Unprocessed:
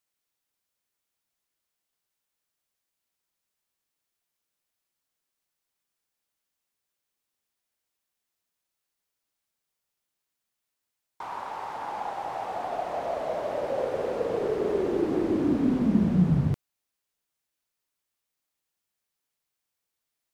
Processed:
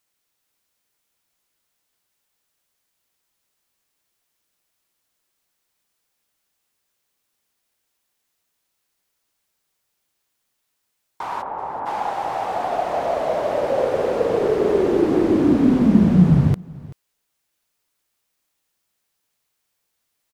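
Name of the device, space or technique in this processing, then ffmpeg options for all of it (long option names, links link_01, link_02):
ducked delay: -filter_complex "[0:a]asplit=3[link_01][link_02][link_03];[link_01]afade=type=out:start_time=11.41:duration=0.02[link_04];[link_02]lowpass=1100,afade=type=in:start_time=11.41:duration=0.02,afade=type=out:start_time=11.85:duration=0.02[link_05];[link_03]afade=type=in:start_time=11.85:duration=0.02[link_06];[link_04][link_05][link_06]amix=inputs=3:normalize=0,asplit=3[link_07][link_08][link_09];[link_08]adelay=383,volume=-6.5dB[link_10];[link_09]apad=whole_len=913451[link_11];[link_10][link_11]sidechaincompress=threshold=-42dB:ratio=5:attack=16:release=790[link_12];[link_07][link_12]amix=inputs=2:normalize=0,volume=8.5dB"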